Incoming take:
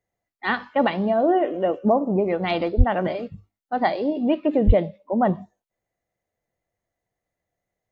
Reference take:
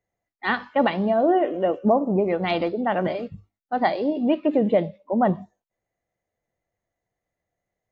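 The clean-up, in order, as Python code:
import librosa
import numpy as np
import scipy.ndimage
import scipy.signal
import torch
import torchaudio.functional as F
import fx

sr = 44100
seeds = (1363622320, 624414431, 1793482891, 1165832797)

y = fx.fix_deplosive(x, sr, at_s=(2.77, 4.66))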